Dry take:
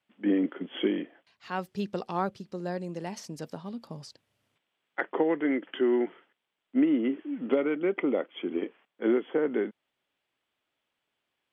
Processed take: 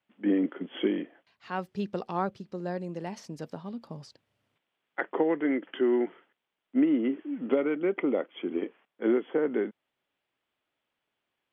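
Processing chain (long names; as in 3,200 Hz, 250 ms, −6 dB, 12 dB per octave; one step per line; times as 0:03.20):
high-shelf EQ 5,000 Hz −9.5 dB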